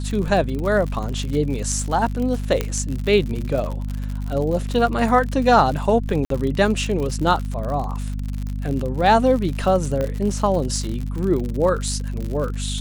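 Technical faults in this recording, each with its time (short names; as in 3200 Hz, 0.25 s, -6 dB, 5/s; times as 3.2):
crackle 78/s -26 dBFS
hum 50 Hz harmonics 5 -26 dBFS
2.61 pop -8 dBFS
6.25–6.3 gap 53 ms
10.01 pop -13 dBFS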